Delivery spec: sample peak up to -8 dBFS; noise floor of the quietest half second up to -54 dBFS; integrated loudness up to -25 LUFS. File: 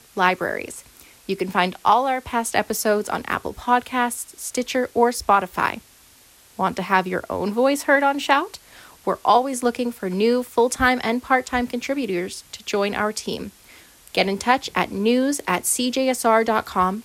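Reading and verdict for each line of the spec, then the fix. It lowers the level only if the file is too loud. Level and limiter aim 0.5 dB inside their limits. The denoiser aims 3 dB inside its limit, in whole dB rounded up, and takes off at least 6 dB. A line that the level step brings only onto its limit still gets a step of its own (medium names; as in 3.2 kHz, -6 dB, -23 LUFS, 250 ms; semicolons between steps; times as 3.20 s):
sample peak -4.5 dBFS: fail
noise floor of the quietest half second -52 dBFS: fail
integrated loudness -21.5 LUFS: fail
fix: trim -4 dB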